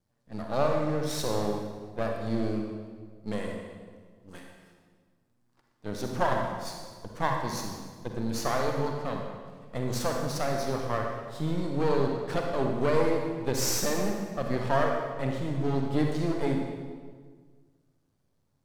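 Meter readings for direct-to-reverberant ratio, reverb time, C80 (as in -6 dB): 1.0 dB, 1.6 s, 4.0 dB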